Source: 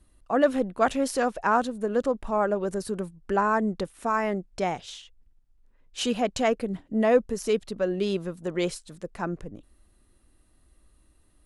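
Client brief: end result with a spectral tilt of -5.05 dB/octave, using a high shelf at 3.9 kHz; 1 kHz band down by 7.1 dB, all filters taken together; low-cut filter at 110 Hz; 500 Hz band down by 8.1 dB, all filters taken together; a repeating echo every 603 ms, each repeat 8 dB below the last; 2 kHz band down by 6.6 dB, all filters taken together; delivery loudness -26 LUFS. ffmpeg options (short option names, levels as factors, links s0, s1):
-af "highpass=110,equalizer=f=500:t=o:g=-8.5,equalizer=f=1000:t=o:g=-4.5,equalizer=f=2000:t=o:g=-4.5,highshelf=f=3900:g=-8.5,aecho=1:1:603|1206|1809|2412|3015:0.398|0.159|0.0637|0.0255|0.0102,volume=2"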